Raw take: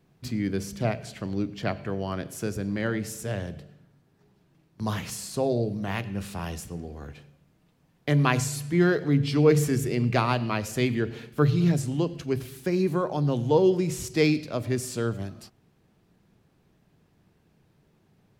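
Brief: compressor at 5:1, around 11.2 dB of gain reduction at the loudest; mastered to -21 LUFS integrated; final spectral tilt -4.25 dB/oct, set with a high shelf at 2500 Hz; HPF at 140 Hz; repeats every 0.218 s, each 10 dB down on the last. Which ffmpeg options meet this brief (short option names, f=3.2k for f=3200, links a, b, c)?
-af "highpass=140,highshelf=f=2.5k:g=6.5,acompressor=threshold=-28dB:ratio=5,aecho=1:1:218|436|654|872:0.316|0.101|0.0324|0.0104,volume=11.5dB"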